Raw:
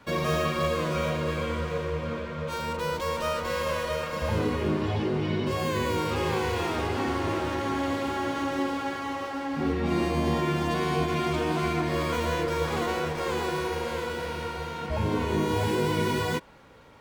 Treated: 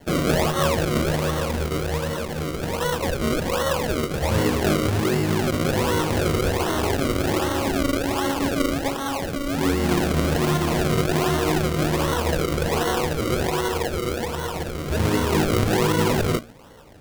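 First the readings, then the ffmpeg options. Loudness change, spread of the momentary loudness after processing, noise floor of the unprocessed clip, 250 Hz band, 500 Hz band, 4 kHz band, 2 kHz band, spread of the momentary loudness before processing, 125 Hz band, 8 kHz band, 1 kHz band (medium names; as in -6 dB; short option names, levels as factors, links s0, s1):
+5.5 dB, 6 LU, -35 dBFS, +6.0 dB, +5.0 dB, +6.5 dB, +4.5 dB, 6 LU, +6.5 dB, +11.5 dB, +3.0 dB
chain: -af "bandreject=f=115.5:t=h:w=4,bandreject=f=231:t=h:w=4,bandreject=f=346.5:t=h:w=4,bandreject=f=462:t=h:w=4,bandreject=f=577.5:t=h:w=4,bandreject=f=693:t=h:w=4,bandreject=f=808.5:t=h:w=4,bandreject=f=924:t=h:w=4,bandreject=f=1039.5:t=h:w=4,bandreject=f=1155:t=h:w=4,bandreject=f=1270.5:t=h:w=4,bandreject=f=1386:t=h:w=4,bandreject=f=1501.5:t=h:w=4,bandreject=f=1617:t=h:w=4,bandreject=f=1732.5:t=h:w=4,bandreject=f=1848:t=h:w=4,bandreject=f=1963.5:t=h:w=4,bandreject=f=2079:t=h:w=4,bandreject=f=2194.5:t=h:w=4,bandreject=f=2310:t=h:w=4,bandreject=f=2425.5:t=h:w=4,bandreject=f=2541:t=h:w=4,bandreject=f=2656.5:t=h:w=4,bandreject=f=2772:t=h:w=4,bandreject=f=2887.5:t=h:w=4,bandreject=f=3003:t=h:w=4,bandreject=f=3118.5:t=h:w=4,bandreject=f=3234:t=h:w=4,bandreject=f=3349.5:t=h:w=4,bandreject=f=3465:t=h:w=4,bandreject=f=3580.5:t=h:w=4,bandreject=f=3696:t=h:w=4,acrusher=samples=35:mix=1:aa=0.000001:lfo=1:lforange=35:lforate=1.3,volume=2"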